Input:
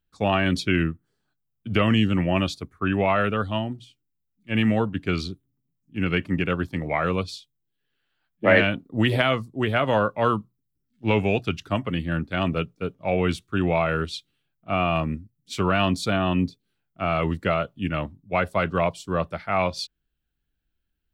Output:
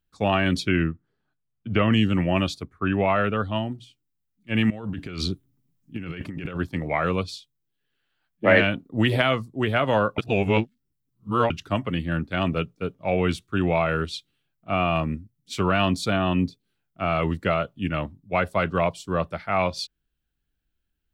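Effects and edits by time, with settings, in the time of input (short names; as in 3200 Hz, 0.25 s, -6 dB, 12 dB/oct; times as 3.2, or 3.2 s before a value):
0.69–1.93 LPF 2900 Hz
2.63–3.56 high shelf 5900 Hz -11 dB
4.7–6.6 negative-ratio compressor -32 dBFS
10.18–11.5 reverse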